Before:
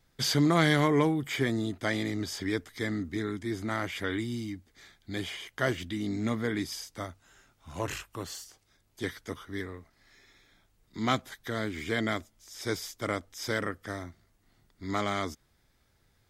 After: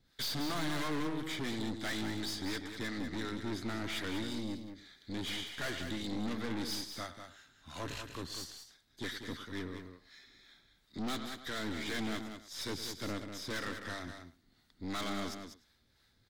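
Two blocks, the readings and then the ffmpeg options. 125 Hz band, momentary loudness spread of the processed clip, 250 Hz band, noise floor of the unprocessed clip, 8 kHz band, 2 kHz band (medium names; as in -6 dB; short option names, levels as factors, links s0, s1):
-10.5 dB, 14 LU, -7.0 dB, -69 dBFS, -4.5 dB, -7.0 dB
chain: -filter_complex "[0:a]acrossover=split=550[s0][s1];[s0]aeval=exprs='val(0)*(1-0.7/2+0.7/2*cos(2*PI*2.9*n/s))':c=same[s2];[s1]aeval=exprs='val(0)*(1-0.7/2-0.7/2*cos(2*PI*2.9*n/s))':c=same[s3];[s2][s3]amix=inputs=2:normalize=0,equalizer=f=250:t=o:w=0.67:g=6,equalizer=f=1600:t=o:w=0.67:g=5,equalizer=f=4000:t=o:w=0.67:g=12,asplit=2[s4][s5];[s5]adelay=105,volume=0.141,highshelf=f=4000:g=-2.36[s6];[s4][s6]amix=inputs=2:normalize=0,aeval=exprs='(tanh(56.2*val(0)+0.55)-tanh(0.55))/56.2':c=same,asplit=2[s7][s8];[s8]aecho=0:1:193:0.398[s9];[s7][s9]amix=inputs=2:normalize=0"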